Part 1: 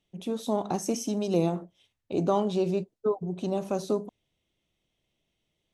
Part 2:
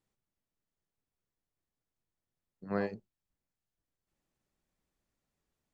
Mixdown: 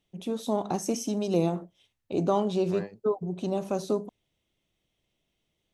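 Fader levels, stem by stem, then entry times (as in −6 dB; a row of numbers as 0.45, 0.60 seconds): 0.0, −5.5 decibels; 0.00, 0.00 seconds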